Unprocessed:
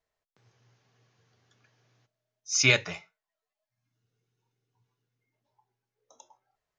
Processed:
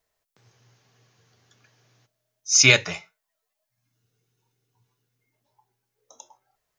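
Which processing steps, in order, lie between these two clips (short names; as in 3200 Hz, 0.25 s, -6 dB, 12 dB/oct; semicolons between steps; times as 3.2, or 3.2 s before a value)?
high shelf 6400 Hz +9.5 dB; gain +5 dB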